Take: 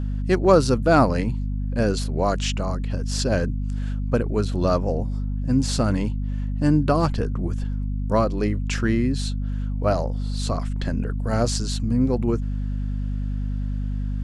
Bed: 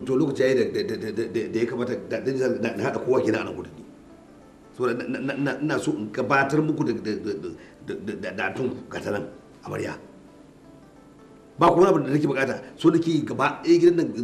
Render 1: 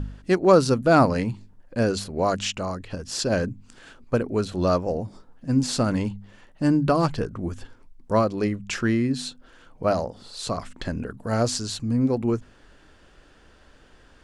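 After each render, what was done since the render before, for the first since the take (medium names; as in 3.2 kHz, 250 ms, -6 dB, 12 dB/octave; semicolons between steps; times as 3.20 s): de-hum 50 Hz, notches 5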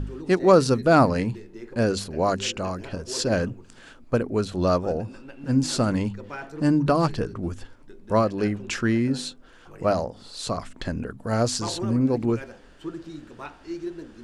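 add bed -16.5 dB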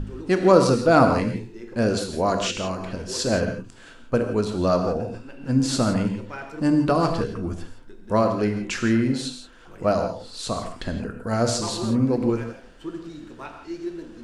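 gated-style reverb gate 190 ms flat, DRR 5 dB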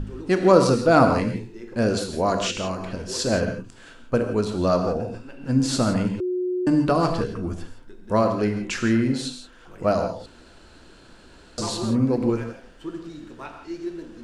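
6.20–6.67 s: bleep 363 Hz -22 dBFS; 10.26–11.58 s: room tone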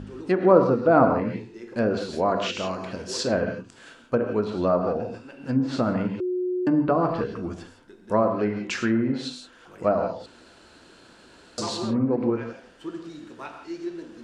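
low-pass that closes with the level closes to 1.3 kHz, closed at -16 dBFS; high-pass 200 Hz 6 dB/octave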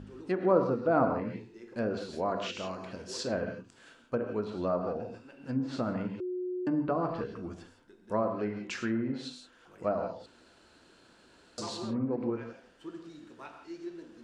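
trim -8.5 dB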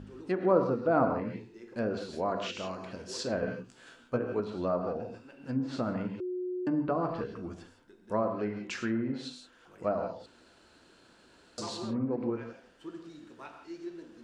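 3.41–4.40 s: doubling 16 ms -3 dB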